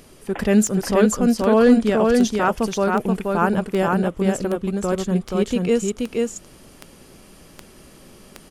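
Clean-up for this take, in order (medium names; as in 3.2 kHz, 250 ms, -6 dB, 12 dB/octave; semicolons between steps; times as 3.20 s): de-click; inverse comb 478 ms -3 dB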